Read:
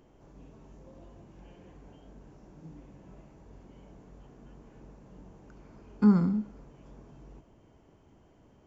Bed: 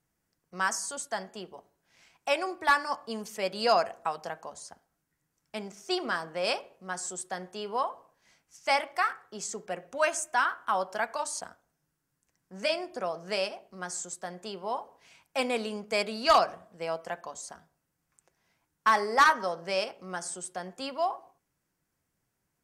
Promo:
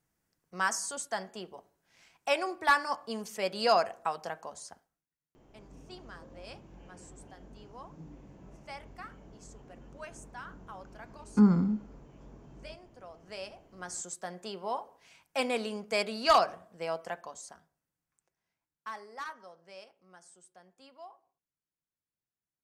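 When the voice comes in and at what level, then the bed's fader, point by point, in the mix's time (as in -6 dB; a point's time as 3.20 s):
5.35 s, -0.5 dB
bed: 4.79 s -1 dB
5.10 s -19 dB
12.93 s -19 dB
14.06 s -1.5 dB
17.05 s -1.5 dB
19.14 s -20 dB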